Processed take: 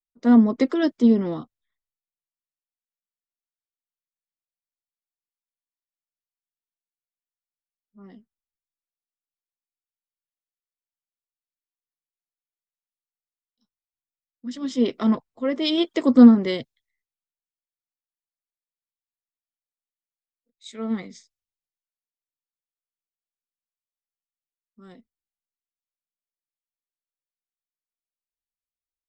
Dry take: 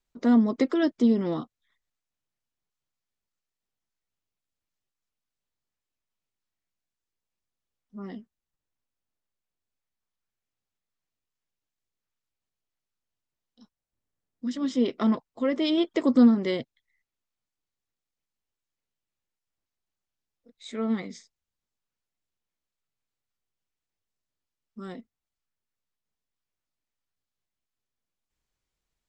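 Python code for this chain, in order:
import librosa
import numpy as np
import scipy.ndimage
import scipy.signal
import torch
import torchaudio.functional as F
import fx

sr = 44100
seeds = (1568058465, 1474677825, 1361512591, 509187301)

y = fx.band_widen(x, sr, depth_pct=70)
y = F.gain(torch.from_numpy(y), 1.5).numpy()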